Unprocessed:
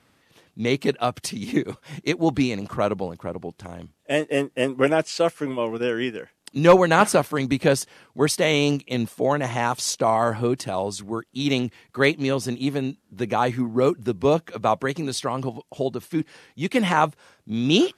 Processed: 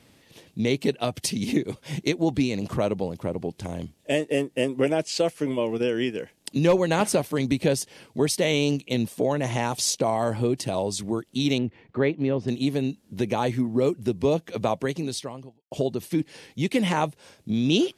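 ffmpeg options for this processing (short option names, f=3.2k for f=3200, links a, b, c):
-filter_complex "[0:a]asettb=1/sr,asplit=3[a][b][c];[a]atrim=end=11.584[d];[b]atrim=start=11.58:end=12.48,asetpts=PTS-STARTPTS,afade=t=in:d=0.004:c=qsin,afade=t=out:st=0.896:d=0.004:c=qsin,lowpass=1.8k[e];[c]atrim=start=12.476[f];[d][e]acrossfade=d=0.004:c1=hsin:c2=qsin[g];[g][f]acrossfade=d=0.004:c1=qsin:c2=hsin,asplit=2[h][i];[h]atrim=end=15.71,asetpts=PTS-STARTPTS,afade=t=out:st=14.81:d=0.9:c=qua[j];[i]atrim=start=15.71,asetpts=PTS-STARTPTS,afade=t=in:d=0.004:c=hsin[k];[j][k]concat=n=2:v=0:a=1,equalizer=f=1.3k:w=1.4:g=-10,bandreject=f=740:w=19,acompressor=threshold=-32dB:ratio=2,volume=6.5dB"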